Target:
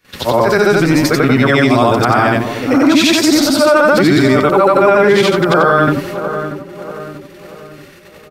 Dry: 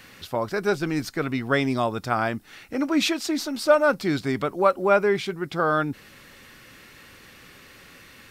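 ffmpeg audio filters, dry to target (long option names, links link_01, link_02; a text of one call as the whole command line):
ffmpeg -i in.wav -filter_complex "[0:a]afftfilt=real='re':imag='-im':win_size=8192:overlap=0.75,agate=range=-27dB:threshold=-50dB:ratio=16:detection=peak,asplit=2[link_01][link_02];[link_02]adelay=635,lowpass=frequency=1300:poles=1,volume=-14dB,asplit=2[link_03][link_04];[link_04]adelay=635,lowpass=frequency=1300:poles=1,volume=0.49,asplit=2[link_05][link_06];[link_06]adelay=635,lowpass=frequency=1300:poles=1,volume=0.49,asplit=2[link_07][link_08];[link_08]adelay=635,lowpass=frequency=1300:poles=1,volume=0.49,asplit=2[link_09][link_10];[link_10]adelay=635,lowpass=frequency=1300:poles=1,volume=0.49[link_11];[link_01][link_03][link_05][link_07][link_09][link_11]amix=inputs=6:normalize=0,alimiter=level_in=22.5dB:limit=-1dB:release=50:level=0:latency=1,volume=-1dB" out.wav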